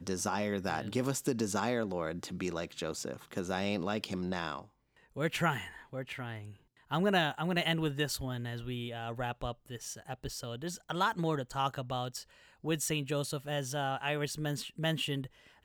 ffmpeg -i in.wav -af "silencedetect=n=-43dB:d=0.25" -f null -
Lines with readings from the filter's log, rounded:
silence_start: 4.62
silence_end: 5.16 | silence_duration: 0.55
silence_start: 6.51
silence_end: 6.91 | silence_duration: 0.40
silence_start: 12.22
silence_end: 12.64 | silence_duration: 0.42
silence_start: 15.27
silence_end: 15.64 | silence_duration: 0.38